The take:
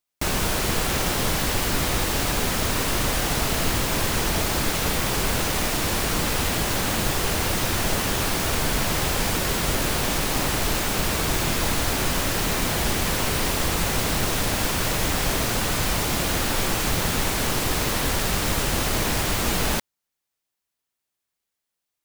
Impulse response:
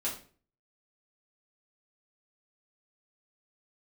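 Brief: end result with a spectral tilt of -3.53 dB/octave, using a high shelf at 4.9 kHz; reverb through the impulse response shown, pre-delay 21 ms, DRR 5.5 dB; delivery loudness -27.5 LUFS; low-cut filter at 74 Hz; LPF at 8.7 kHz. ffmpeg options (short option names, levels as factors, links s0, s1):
-filter_complex "[0:a]highpass=74,lowpass=8700,highshelf=f=4900:g=5,asplit=2[s0][s1];[1:a]atrim=start_sample=2205,adelay=21[s2];[s1][s2]afir=irnorm=-1:irlink=0,volume=0.335[s3];[s0][s3]amix=inputs=2:normalize=0,volume=0.531"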